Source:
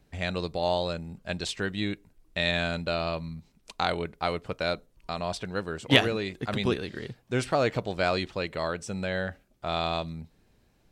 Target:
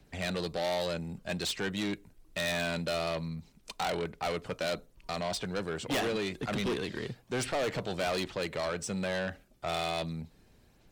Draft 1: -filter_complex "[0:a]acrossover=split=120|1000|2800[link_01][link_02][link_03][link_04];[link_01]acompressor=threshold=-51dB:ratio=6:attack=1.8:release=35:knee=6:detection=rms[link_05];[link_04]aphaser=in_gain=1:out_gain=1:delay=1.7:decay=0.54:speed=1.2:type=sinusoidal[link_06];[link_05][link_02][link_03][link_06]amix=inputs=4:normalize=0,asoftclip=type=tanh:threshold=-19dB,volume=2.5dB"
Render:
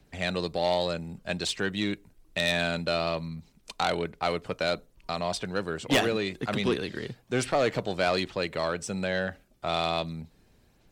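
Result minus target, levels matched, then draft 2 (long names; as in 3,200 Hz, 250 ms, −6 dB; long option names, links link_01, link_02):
soft clipping: distortion −7 dB
-filter_complex "[0:a]acrossover=split=120|1000|2800[link_01][link_02][link_03][link_04];[link_01]acompressor=threshold=-51dB:ratio=6:attack=1.8:release=35:knee=6:detection=rms[link_05];[link_04]aphaser=in_gain=1:out_gain=1:delay=1.7:decay=0.54:speed=1.2:type=sinusoidal[link_06];[link_05][link_02][link_03][link_06]amix=inputs=4:normalize=0,asoftclip=type=tanh:threshold=-30dB,volume=2.5dB"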